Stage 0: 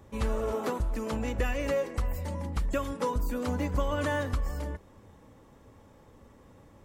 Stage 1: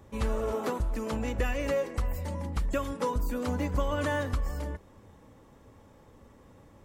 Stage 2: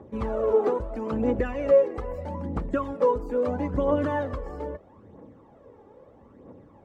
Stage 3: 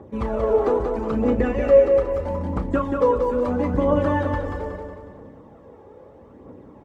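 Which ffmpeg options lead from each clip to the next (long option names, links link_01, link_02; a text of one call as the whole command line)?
ffmpeg -i in.wav -af anull out.wav
ffmpeg -i in.wav -af "aphaser=in_gain=1:out_gain=1:delay=2.6:decay=0.54:speed=0.77:type=triangular,bandpass=frequency=420:width_type=q:width=0.86:csg=0,volume=7dB" out.wav
ffmpeg -i in.wav -filter_complex "[0:a]asplit=2[link_01][link_02];[link_02]adelay=33,volume=-10.5dB[link_03];[link_01][link_03]amix=inputs=2:normalize=0,aecho=1:1:183|366|549|732|915|1098:0.562|0.253|0.114|0.0512|0.0231|0.0104,volume=3.5dB" out.wav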